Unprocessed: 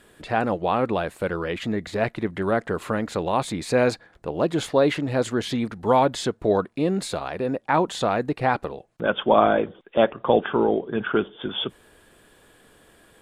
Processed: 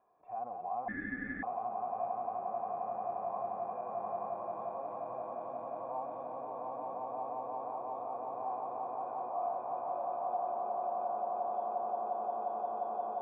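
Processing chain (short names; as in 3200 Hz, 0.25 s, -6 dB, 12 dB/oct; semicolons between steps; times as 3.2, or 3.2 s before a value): low shelf 99 Hz -8.5 dB; swelling echo 0.176 s, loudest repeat 8, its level -3.5 dB; in parallel at +0.5 dB: negative-ratio compressor -22 dBFS, ratio -0.5; on the sum: limiter -6.5 dBFS, peak gain reduction 8 dB; harmonic-percussive split percussive -15 dB; vocal tract filter a; 0.88–1.43 ring modulator 990 Hz; gain -7 dB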